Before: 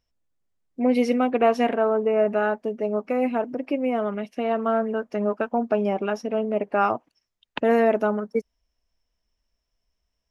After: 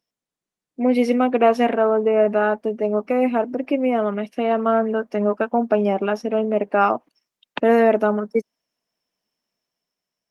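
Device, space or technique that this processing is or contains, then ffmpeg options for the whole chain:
video call: -af "highpass=frequency=150:width=0.5412,highpass=frequency=150:width=1.3066,dynaudnorm=framelen=180:gausssize=9:maxgain=4.5dB" -ar 48000 -c:a libopus -b:a 32k

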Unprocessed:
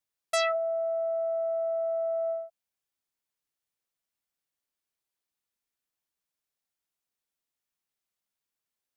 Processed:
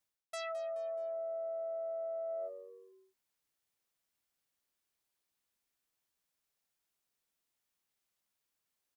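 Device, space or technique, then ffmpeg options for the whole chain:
compression on the reversed sound: -filter_complex "[0:a]asplit=4[link_01][link_02][link_03][link_04];[link_02]adelay=213,afreqshift=-93,volume=-20dB[link_05];[link_03]adelay=426,afreqshift=-186,volume=-27.7dB[link_06];[link_04]adelay=639,afreqshift=-279,volume=-35.5dB[link_07];[link_01][link_05][link_06][link_07]amix=inputs=4:normalize=0,areverse,acompressor=threshold=-40dB:ratio=12,areverse,volume=2.5dB"

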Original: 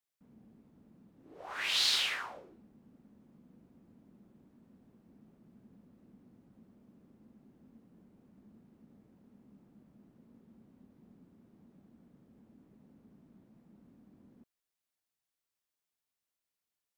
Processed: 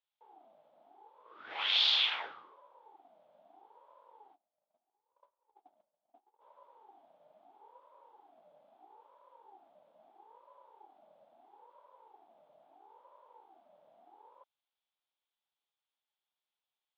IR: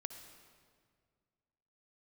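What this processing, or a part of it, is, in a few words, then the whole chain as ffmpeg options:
voice changer toy: -filter_complex "[0:a]asplit=3[link_01][link_02][link_03];[link_01]afade=type=out:start_time=4.34:duration=0.02[link_04];[link_02]agate=range=-25dB:threshold=-57dB:ratio=16:detection=peak,afade=type=in:start_time=4.34:duration=0.02,afade=type=out:start_time=6.4:duration=0.02[link_05];[link_03]afade=type=in:start_time=6.4:duration=0.02[link_06];[link_04][link_05][link_06]amix=inputs=3:normalize=0,aeval=exprs='val(0)*sin(2*PI*580*n/s+580*0.35/0.76*sin(2*PI*0.76*n/s))':channel_layout=same,highpass=460,equalizer=frequency=840:width_type=q:width=4:gain=7,equalizer=frequency=1800:width_type=q:width=4:gain=-4,equalizer=frequency=3400:width_type=q:width=4:gain=9,lowpass=frequency=4000:width=0.5412,lowpass=frequency=4000:width=1.3066,equalizer=frequency=160:width_type=o:width=1.5:gain=-4,volume=2dB"

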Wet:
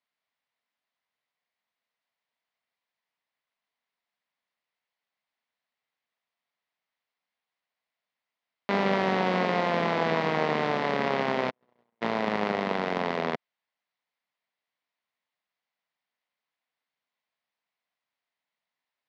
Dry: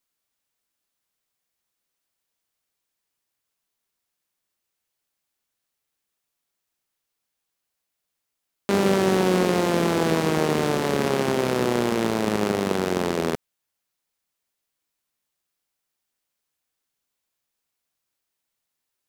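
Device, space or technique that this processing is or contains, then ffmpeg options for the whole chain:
kitchen radio: -filter_complex "[0:a]asplit=3[link_01][link_02][link_03];[link_01]afade=type=out:start_time=11.49:duration=0.02[link_04];[link_02]agate=range=-57dB:threshold=-15dB:ratio=16:detection=peak,afade=type=in:start_time=11.49:duration=0.02,afade=type=out:start_time=12.01:duration=0.02[link_05];[link_03]afade=type=in:start_time=12.01:duration=0.02[link_06];[link_04][link_05][link_06]amix=inputs=3:normalize=0,highpass=170,equalizer=frequency=350:width_type=q:width=4:gain=-9,equalizer=frequency=690:width_type=q:width=4:gain=5,equalizer=frequency=1000:width_type=q:width=4:gain=5,equalizer=frequency=2000:width_type=q:width=4:gain=7,lowpass=frequency=4400:width=0.5412,lowpass=frequency=4400:width=1.3066,volume=-4dB"

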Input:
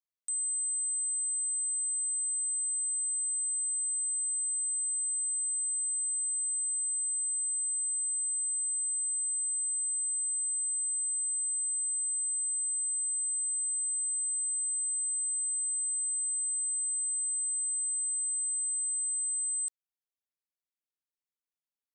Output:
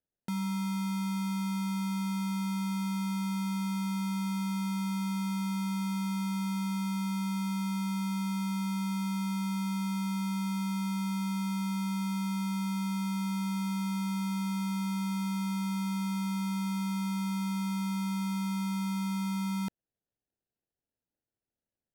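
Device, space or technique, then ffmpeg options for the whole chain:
crushed at another speed: -af "asetrate=55125,aresample=44100,acrusher=samples=31:mix=1:aa=0.000001,asetrate=35280,aresample=44100"

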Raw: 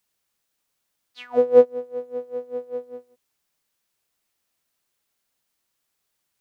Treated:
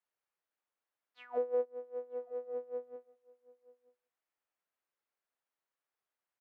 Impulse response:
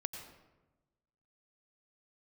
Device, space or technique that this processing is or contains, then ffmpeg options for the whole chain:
DJ mixer with the lows and highs turned down: -filter_complex "[0:a]asettb=1/sr,asplit=3[link_01][link_02][link_03];[link_01]atrim=end=2.474[link_04];[link_02]atrim=start=2.47:end=2.96,asetpts=PTS-STARTPTS,afade=type=in:duration=0.004:curve=qsin,afade=type=out:start_time=0.486:duration=0.004:curve=qsin,lowshelf=frequency=160:gain=9.5[link_05];[link_03]atrim=start=2.956[link_06];[link_04][link_05]acrossfade=duration=0.004:curve1=hsin:curve2=qsin[link_07];[link_07][link_06]acrossfade=duration=0.004:curve1=qsin:curve2=hsin,acrossover=split=360 2300:gain=0.2 1 0.158[link_08][link_09][link_10];[link_08][link_09][link_10]amix=inputs=3:normalize=0,asplit=2[link_11][link_12];[link_12]adelay=932.9,volume=-22dB,highshelf=frequency=4000:gain=-21[link_13];[link_11][link_13]amix=inputs=2:normalize=0,alimiter=limit=-16dB:level=0:latency=1:release=344,volume=-8.5dB"

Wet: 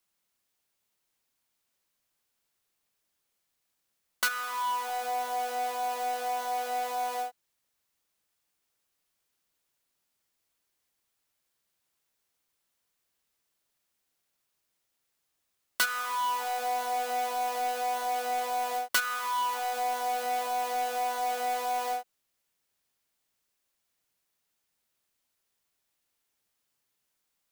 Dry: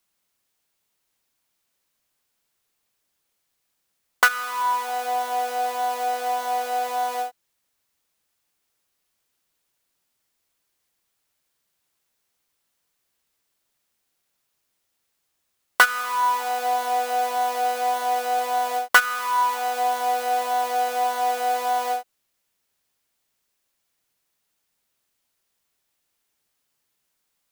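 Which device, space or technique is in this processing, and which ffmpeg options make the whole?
one-band saturation: -filter_complex "[0:a]acrossover=split=300|2800[link_01][link_02][link_03];[link_02]asoftclip=type=tanh:threshold=-22dB[link_04];[link_01][link_04][link_03]amix=inputs=3:normalize=0,volume=-4.5dB"

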